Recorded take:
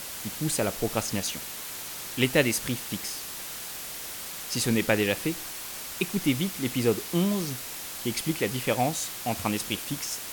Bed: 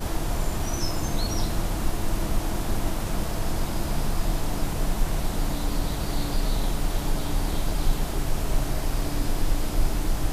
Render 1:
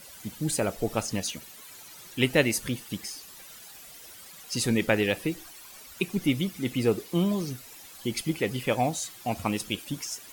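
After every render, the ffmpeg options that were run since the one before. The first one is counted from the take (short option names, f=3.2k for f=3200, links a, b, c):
-af "afftdn=nr=13:nf=-38"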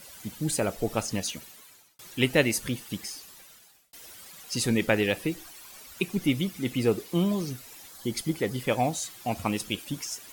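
-filter_complex "[0:a]asettb=1/sr,asplit=3[a][b][c];[a]atrim=end=7.884[d];[b]atrim=start=7.88:end=8.68,asetpts=PTS-STARTPTS,afade=t=in:d=0.004:c=qsin,afade=t=out:st=0.796:d=0.004:c=qsin,equalizer=f=2.6k:t=o:w=0.38:g=-10[e];[c]atrim=start=8.676[f];[d][e]acrossfade=d=0.004:c1=hsin:c2=qsin[g];[g][f]acrossfade=d=0.004:c1=qsin:c2=hsin,asplit=3[h][i][j];[h]atrim=end=1.99,asetpts=PTS-STARTPTS,afade=t=out:st=1.4:d=0.59[k];[i]atrim=start=1.99:end=3.93,asetpts=PTS-STARTPTS,afade=t=in:d=0.004:c=hsin,afade=t=out:st=1.16:d=0.78[l];[j]atrim=start=3.93,asetpts=PTS-STARTPTS,afade=t=in:d=0.004:c=hsin[m];[k][l][m]concat=n=3:v=0:a=1"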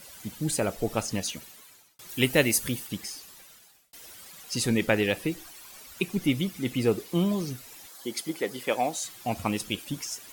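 -filter_complex "[0:a]asettb=1/sr,asplit=3[a][b][c];[a]atrim=end=2.094[d];[b]atrim=start=2.09:end=2.87,asetpts=PTS-STARTPTS,afade=t=in:d=0.004:c=qsin,afade=t=out:st=0.776:d=0.004:c=qsin,highshelf=f=8.8k:g=10.5[e];[c]atrim=start=2.866[f];[d][e]acrossfade=d=0.004:c1=hsin:c2=qsin[g];[g][f]acrossfade=d=0.004:c1=qsin:c2=hsin,asettb=1/sr,asplit=3[h][i][j];[h]atrim=end=7.874[k];[i]atrim=start=7.87:end=9.05,asetpts=PTS-STARTPTS,afade=t=in:d=0.004:c=qsin,afade=t=out:st=1.176:d=0.004:c=qsin,highpass=310[l];[j]atrim=start=9.046[m];[k][l]acrossfade=d=0.004:c1=hsin:c2=qsin[n];[n][m]acrossfade=d=0.004:c1=qsin:c2=hsin"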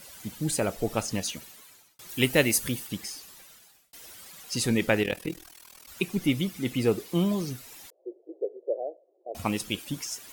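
-filter_complex "[0:a]asettb=1/sr,asplit=3[a][b][c];[a]atrim=end=1.034[d];[b]atrim=start=1.03:end=2.74,asetpts=PTS-STARTPTS,afade=t=in:d=0.004:c=qsin,afade=t=out:st=1.706:d=0.004:c=qsin,acrusher=bits=7:mode=log:mix=0:aa=0.000001[e];[c]atrim=start=2.736[f];[d][e]acrossfade=d=0.004:c1=hsin:c2=qsin[g];[g][f]acrossfade=d=0.004:c1=qsin:c2=hsin,asettb=1/sr,asplit=3[h][i][j];[h]atrim=end=5.034[k];[i]atrim=start=5.03:end=5.88,asetpts=PTS-STARTPTS,afade=t=in:d=0.004:c=qsin,afade=t=out:st=0.846:d=0.004:c=qsin,tremolo=f=40:d=0.889[l];[j]atrim=start=5.876[m];[k][l]acrossfade=d=0.004:c1=hsin:c2=qsin[n];[n][m]acrossfade=d=0.004:c1=qsin:c2=hsin,asettb=1/sr,asplit=3[o][p][q];[o]atrim=end=7.904[r];[p]atrim=start=7.9:end=9.35,asetpts=PTS-STARTPTS,afade=t=in:d=0.004:c=qsin,afade=t=out:st=1.446:d=0.004:c=qsin,asuperpass=centerf=480:order=8:qfactor=1.7[s];[q]atrim=start=9.346[t];[r][s]acrossfade=d=0.004:c1=hsin:c2=qsin[u];[u][t]acrossfade=d=0.004:c1=qsin:c2=hsin"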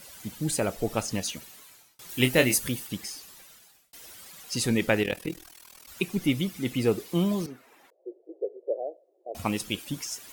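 -filter_complex "[0:a]asettb=1/sr,asplit=3[a][b][c];[a]atrim=end=1.504[d];[b]atrim=start=1.5:end=2.55,asetpts=PTS-STARTPTS,afade=t=in:d=0.004:c=qsin,afade=t=out:st=1.046:d=0.004:c=qsin,asplit=2[e][f];[f]adelay=24,volume=-7dB[g];[e][g]amix=inputs=2:normalize=0,atrim=end_sample=46305[h];[c]atrim=start=2.546[i];[d][h]acrossfade=d=0.004:c1=hsin:c2=qsin[j];[j][i]acrossfade=d=0.004:c1=qsin:c2=hsin,asettb=1/sr,asplit=3[k][l][m];[k]atrim=end=7.464[n];[l]atrim=start=7.46:end=8.71,asetpts=PTS-STARTPTS,afade=t=in:d=0.004:c=qsin,afade=t=out:st=1.246:d=0.004:c=qsin,acrossover=split=220 2200:gain=0.0631 1 0.112[o][p][q];[o][p][q]amix=inputs=3:normalize=0[r];[m]atrim=start=8.706[s];[n][r]acrossfade=d=0.004:c1=hsin:c2=qsin[t];[t][s]acrossfade=d=0.004:c1=qsin:c2=hsin"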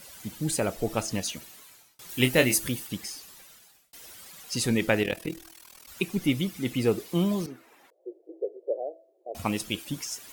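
-af "bandreject=f=328.6:t=h:w=4,bandreject=f=657.2:t=h:w=4"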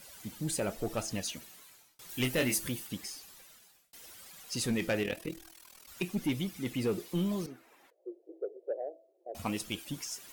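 -af "flanger=delay=1.2:depth=4.6:regen=80:speed=0.92:shape=sinusoidal,asoftclip=type=tanh:threshold=-23dB"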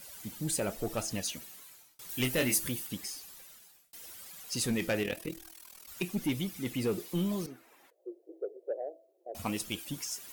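-af "crystalizer=i=0.5:c=0"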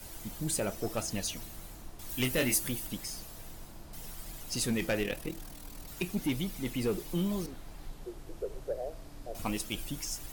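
-filter_complex "[1:a]volume=-21.5dB[a];[0:a][a]amix=inputs=2:normalize=0"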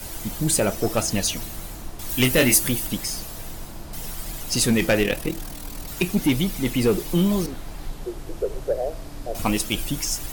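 -af "volume=11.5dB"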